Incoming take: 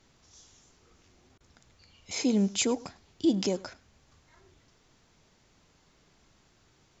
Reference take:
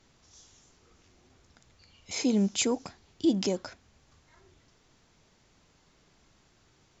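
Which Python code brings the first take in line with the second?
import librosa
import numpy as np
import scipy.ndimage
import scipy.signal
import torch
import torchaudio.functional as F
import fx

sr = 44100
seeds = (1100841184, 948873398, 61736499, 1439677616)

y = fx.fix_interpolate(x, sr, at_s=(1.38,), length_ms=23.0)
y = fx.fix_echo_inverse(y, sr, delay_ms=102, level_db=-22.0)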